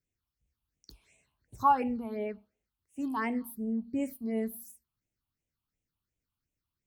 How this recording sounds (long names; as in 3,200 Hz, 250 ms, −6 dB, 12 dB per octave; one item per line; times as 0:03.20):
phaser sweep stages 6, 2.8 Hz, lowest notch 480–1,300 Hz